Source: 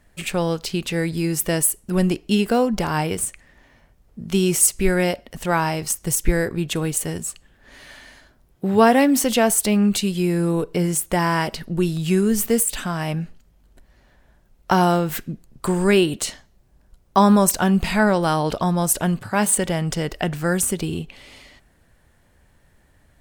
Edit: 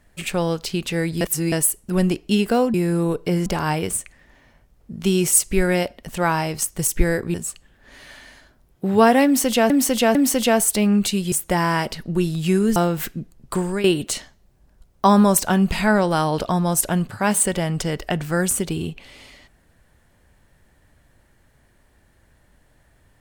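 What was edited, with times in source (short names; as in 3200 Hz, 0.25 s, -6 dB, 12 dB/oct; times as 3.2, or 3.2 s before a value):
1.21–1.52 reverse
6.62–7.14 cut
9.05–9.5 loop, 3 plays
10.22–10.94 move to 2.74
12.38–14.88 cut
15.65–15.96 fade out, to -12.5 dB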